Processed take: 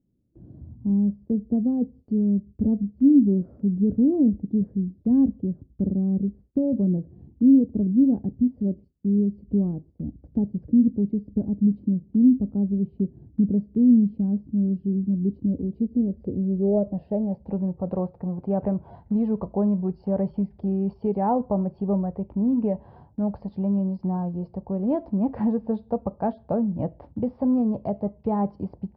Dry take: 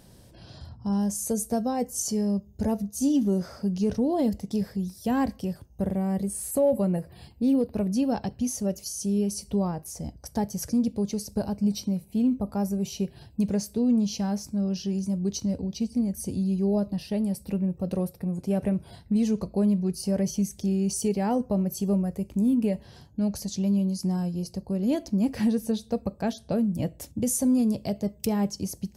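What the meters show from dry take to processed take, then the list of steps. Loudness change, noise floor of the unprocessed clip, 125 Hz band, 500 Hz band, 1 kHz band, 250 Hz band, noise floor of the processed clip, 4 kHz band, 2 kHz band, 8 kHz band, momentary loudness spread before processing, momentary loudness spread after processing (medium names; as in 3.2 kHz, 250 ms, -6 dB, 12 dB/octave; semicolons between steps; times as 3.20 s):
+3.0 dB, -53 dBFS, +2.5 dB, +0.5 dB, +1.5 dB, +4.0 dB, -56 dBFS, under -30 dB, no reading, under -40 dB, 7 LU, 10 LU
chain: resampled via 11.025 kHz; low-pass sweep 290 Hz -> 930 Hz, 15.31–17.74 s; gate with hold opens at -40 dBFS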